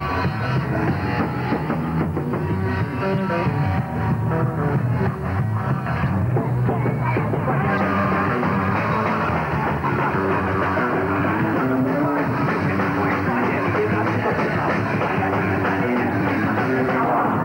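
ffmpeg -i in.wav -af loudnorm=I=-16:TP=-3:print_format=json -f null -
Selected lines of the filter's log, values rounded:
"input_i" : "-20.9",
"input_tp" : "-8.5",
"input_lra" : "1.7",
"input_thresh" : "-30.9",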